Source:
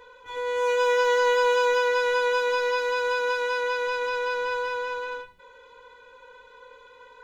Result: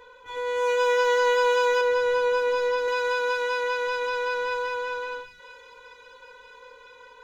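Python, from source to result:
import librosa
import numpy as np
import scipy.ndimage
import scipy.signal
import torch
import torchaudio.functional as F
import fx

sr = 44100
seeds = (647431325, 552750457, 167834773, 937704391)

y = fx.tilt_shelf(x, sr, db=5.0, hz=700.0, at=(1.81, 2.88))
y = fx.echo_wet_highpass(y, sr, ms=983, feedback_pct=66, hz=1800.0, wet_db=-18.0)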